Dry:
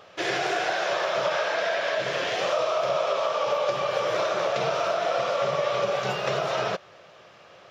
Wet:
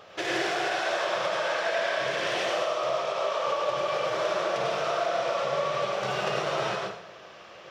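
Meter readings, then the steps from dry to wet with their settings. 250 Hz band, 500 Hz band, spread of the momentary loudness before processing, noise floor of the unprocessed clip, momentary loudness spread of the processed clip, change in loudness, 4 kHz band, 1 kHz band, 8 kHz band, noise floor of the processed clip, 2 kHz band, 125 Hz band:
0.0 dB, -2.5 dB, 2 LU, -51 dBFS, 4 LU, -2.0 dB, -1.5 dB, -1.5 dB, n/a, -48 dBFS, -1.0 dB, -3.0 dB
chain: self-modulated delay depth 0.054 ms; compressor, threshold -28 dBFS, peak gain reduction 7.5 dB; plate-style reverb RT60 0.64 s, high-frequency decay 0.9×, pre-delay 80 ms, DRR -1.5 dB

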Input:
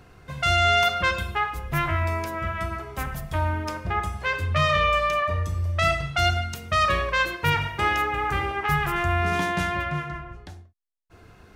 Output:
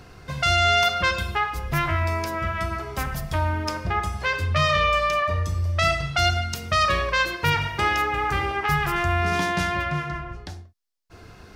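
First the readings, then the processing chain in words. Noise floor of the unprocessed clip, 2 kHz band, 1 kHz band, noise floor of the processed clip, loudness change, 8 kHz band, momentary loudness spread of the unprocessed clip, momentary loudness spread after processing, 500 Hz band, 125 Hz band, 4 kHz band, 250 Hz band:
-52 dBFS, +1.0 dB, +1.0 dB, -47 dBFS, +1.0 dB, +3.5 dB, 10 LU, 9 LU, +1.0 dB, +1.0 dB, +2.5 dB, +1.0 dB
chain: in parallel at 0 dB: compressor, threshold -31 dBFS, peak gain reduction 14.5 dB; on the sum: bell 5000 Hz +6.5 dB 0.67 oct; gain -1.5 dB

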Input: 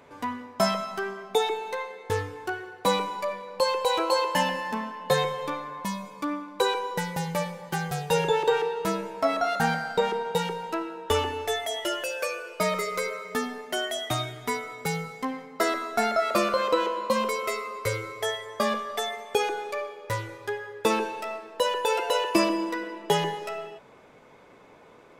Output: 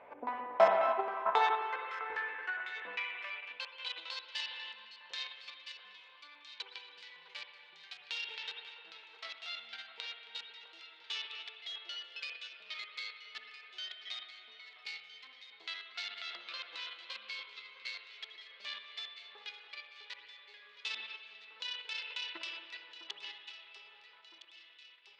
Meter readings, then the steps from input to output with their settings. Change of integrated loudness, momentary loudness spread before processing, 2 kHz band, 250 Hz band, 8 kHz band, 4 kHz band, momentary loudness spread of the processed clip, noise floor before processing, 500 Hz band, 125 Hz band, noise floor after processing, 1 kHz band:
-11.0 dB, 9 LU, -9.0 dB, under -25 dB, -23.0 dB, -7.5 dB, 16 LU, -52 dBFS, -14.0 dB, under -35 dB, -59 dBFS, -11.0 dB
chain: LFO low-pass square 3.7 Hz 360–2500 Hz; added harmonics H 3 -15 dB, 6 -23 dB, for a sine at -5.5 dBFS; spring tank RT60 2.3 s, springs 55/59 ms, chirp 70 ms, DRR 3 dB; hum 60 Hz, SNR 24 dB; on a send: echo with dull and thin repeats by turns 0.656 s, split 1600 Hz, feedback 66%, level -8 dB; on the sum: high-pass sweep 660 Hz -> 4000 Hz, 0.54–4.24; tilt -2.5 dB/oct; in parallel at -0.5 dB: level quantiser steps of 16 dB; on the sum: gain -3.5 dB

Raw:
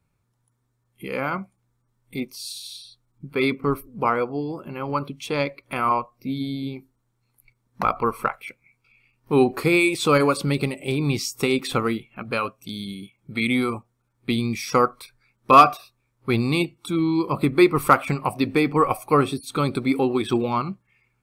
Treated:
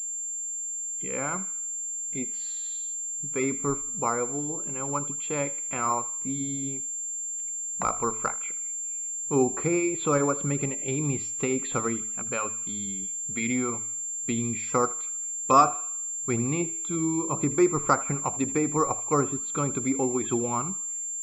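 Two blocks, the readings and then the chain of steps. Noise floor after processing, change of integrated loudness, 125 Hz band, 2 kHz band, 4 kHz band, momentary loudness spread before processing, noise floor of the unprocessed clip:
-33 dBFS, -4.5 dB, -5.5 dB, -9.5 dB, -14.0 dB, 15 LU, -72 dBFS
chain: de-hum 109.8 Hz, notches 4; treble ducked by the level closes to 1600 Hz, closed at -16 dBFS; on a send: thinning echo 79 ms, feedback 56%, high-pass 870 Hz, level -16 dB; on the sum: pulse-width modulation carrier 7300 Hz; gain -5.5 dB

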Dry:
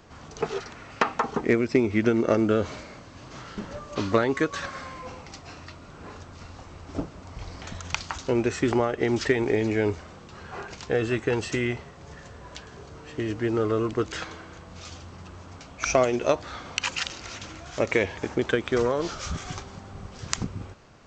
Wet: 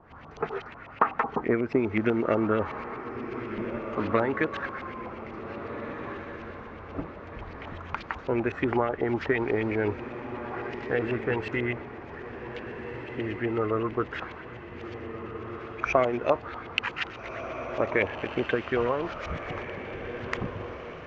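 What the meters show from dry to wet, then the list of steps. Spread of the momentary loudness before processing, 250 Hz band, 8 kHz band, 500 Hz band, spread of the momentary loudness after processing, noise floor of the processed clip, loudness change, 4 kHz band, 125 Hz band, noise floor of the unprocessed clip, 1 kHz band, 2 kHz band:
21 LU, -3.0 dB, under -20 dB, -2.5 dB, 13 LU, -44 dBFS, -3.5 dB, -6.5 dB, -3.5 dB, -46 dBFS, +1.0 dB, -0.5 dB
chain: LFO low-pass saw up 8.1 Hz 810–2900 Hz; diffused feedback echo 1.677 s, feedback 46%, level -9.5 dB; gain -4 dB

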